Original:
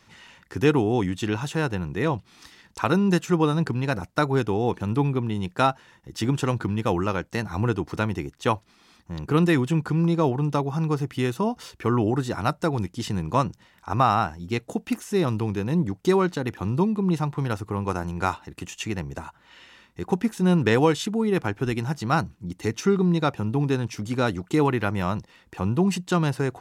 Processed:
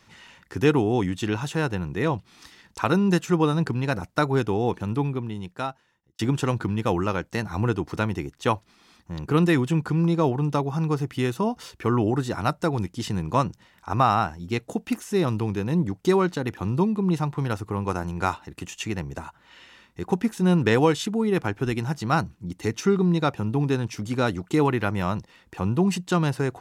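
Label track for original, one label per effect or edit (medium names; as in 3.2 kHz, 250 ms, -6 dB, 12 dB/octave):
4.630000	6.190000	fade out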